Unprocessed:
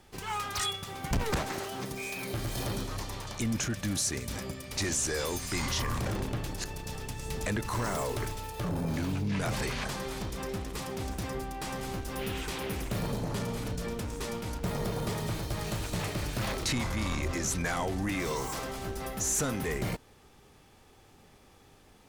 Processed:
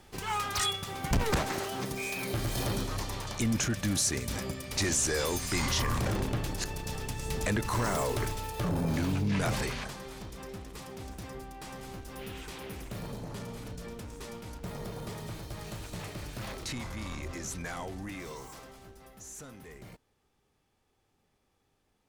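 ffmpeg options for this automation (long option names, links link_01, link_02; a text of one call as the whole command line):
ffmpeg -i in.wav -af "volume=2dB,afade=type=out:start_time=9.47:duration=0.48:silence=0.354813,afade=type=out:start_time=17.79:duration=1.2:silence=0.334965" out.wav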